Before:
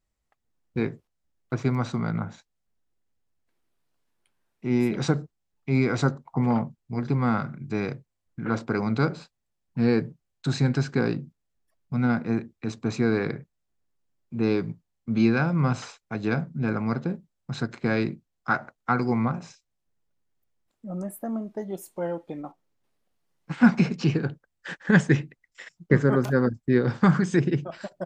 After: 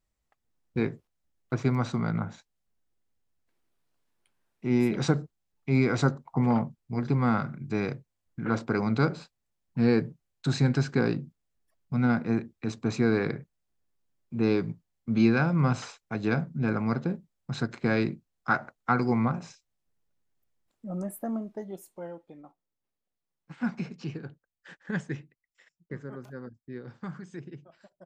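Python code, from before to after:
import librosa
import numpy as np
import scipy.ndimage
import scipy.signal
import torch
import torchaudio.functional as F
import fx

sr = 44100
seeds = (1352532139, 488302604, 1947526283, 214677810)

y = fx.gain(x, sr, db=fx.line((21.29, -1.0), (22.3, -13.0), (24.91, -13.0), (25.94, -19.5)))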